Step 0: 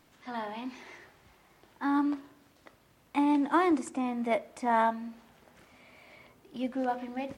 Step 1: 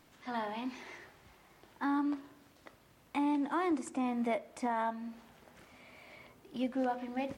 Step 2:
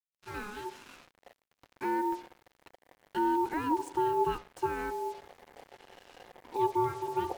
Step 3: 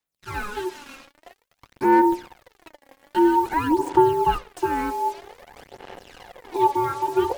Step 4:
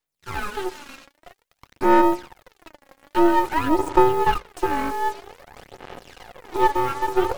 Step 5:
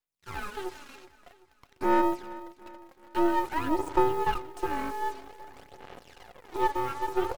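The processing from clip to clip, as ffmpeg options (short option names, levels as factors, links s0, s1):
-af "alimiter=limit=0.0631:level=0:latency=1:release=338"
-af "asubboost=boost=7.5:cutoff=240,aeval=exprs='val(0)*sin(2*PI*630*n/s)':c=same,acrusher=bits=7:mix=0:aa=0.5"
-af "aphaser=in_gain=1:out_gain=1:delay=3.7:decay=0.6:speed=0.51:type=sinusoidal,volume=2.37"
-af "aeval=exprs='if(lt(val(0),0),0.251*val(0),val(0))':c=same,volume=1.58"
-af "aecho=1:1:380|760|1140|1520:0.126|0.0567|0.0255|0.0115,volume=0.398"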